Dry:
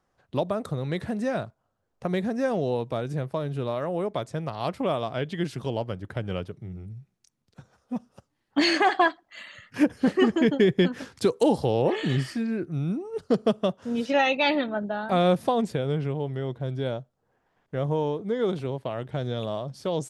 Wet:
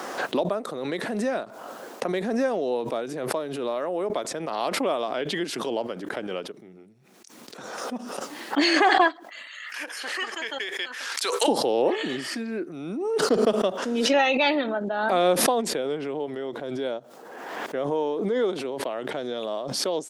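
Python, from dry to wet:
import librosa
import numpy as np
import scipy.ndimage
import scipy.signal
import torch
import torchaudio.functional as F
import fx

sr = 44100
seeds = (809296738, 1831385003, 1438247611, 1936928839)

y = fx.highpass(x, sr, hz=1300.0, slope=12, at=(9.47, 11.48))
y = scipy.signal.sosfilt(scipy.signal.butter(4, 260.0, 'highpass', fs=sr, output='sos'), y)
y = fx.pre_swell(y, sr, db_per_s=33.0)
y = y * librosa.db_to_amplitude(1.0)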